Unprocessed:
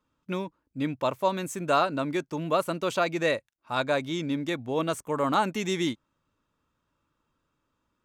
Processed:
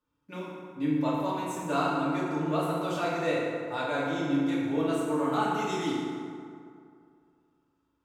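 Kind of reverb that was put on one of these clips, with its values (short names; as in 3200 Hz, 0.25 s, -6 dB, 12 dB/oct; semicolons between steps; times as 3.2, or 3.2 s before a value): FDN reverb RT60 2.4 s, low-frequency decay 0.95×, high-frequency decay 0.5×, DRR -7.5 dB; gain -11 dB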